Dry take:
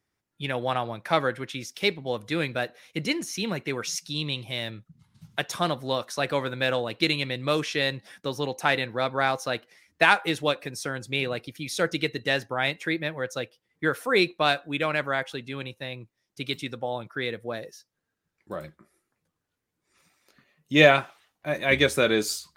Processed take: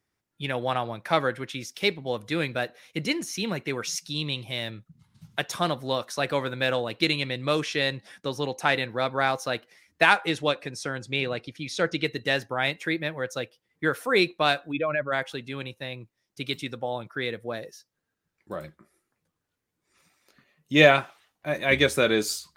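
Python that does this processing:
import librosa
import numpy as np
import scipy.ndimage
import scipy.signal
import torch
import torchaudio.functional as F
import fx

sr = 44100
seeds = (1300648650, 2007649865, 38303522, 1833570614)

y = fx.lowpass(x, sr, hz=12000.0, slope=12, at=(7.06, 8.75))
y = fx.lowpass(y, sr, hz=fx.line((10.16, 10000.0), (12.03, 5800.0)), slope=12, at=(10.16, 12.03), fade=0.02)
y = fx.spec_expand(y, sr, power=2.0, at=(14.71, 15.11), fade=0.02)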